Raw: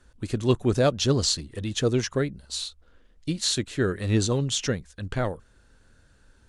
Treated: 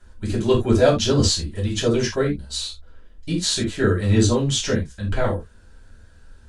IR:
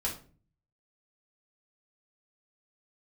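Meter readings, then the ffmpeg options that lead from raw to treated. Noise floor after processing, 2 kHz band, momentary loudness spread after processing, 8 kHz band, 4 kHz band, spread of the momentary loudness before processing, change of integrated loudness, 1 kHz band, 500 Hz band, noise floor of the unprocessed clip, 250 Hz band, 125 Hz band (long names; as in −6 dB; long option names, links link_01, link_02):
−48 dBFS, +5.0 dB, 11 LU, +3.5 dB, +4.0 dB, 10 LU, +5.0 dB, +5.0 dB, +5.5 dB, −59 dBFS, +5.5 dB, +5.0 dB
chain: -filter_complex "[1:a]atrim=start_sample=2205,atrim=end_sample=3969[link_01];[0:a][link_01]afir=irnorm=-1:irlink=0,volume=1dB"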